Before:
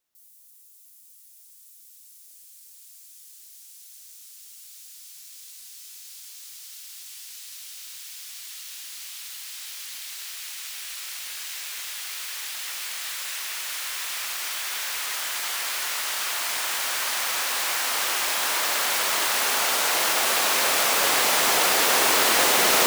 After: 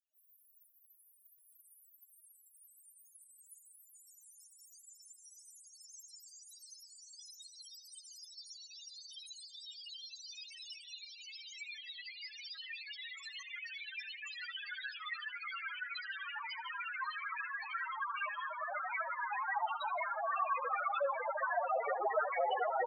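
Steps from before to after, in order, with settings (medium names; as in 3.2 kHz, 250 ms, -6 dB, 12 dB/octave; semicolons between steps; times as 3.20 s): in parallel at 0 dB: compression, threshold -37 dBFS, peak gain reduction 19 dB; on the sum: loudest bins only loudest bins 2; vibrato 10 Hz 12 cents; feedback delay 79 ms, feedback 27%, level -18 dB; Shepard-style flanger rising 0.3 Hz; trim +6.5 dB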